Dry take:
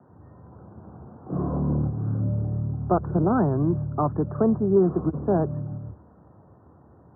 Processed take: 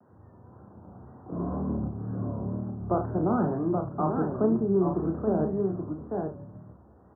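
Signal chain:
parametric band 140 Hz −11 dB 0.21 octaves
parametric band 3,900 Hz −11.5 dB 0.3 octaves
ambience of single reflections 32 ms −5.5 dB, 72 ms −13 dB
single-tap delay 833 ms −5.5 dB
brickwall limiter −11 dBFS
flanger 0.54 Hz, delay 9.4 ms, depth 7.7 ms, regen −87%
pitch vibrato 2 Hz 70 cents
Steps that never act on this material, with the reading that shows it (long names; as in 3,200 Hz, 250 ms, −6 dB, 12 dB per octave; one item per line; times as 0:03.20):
parametric band 3,900 Hz: nothing at its input above 1,400 Hz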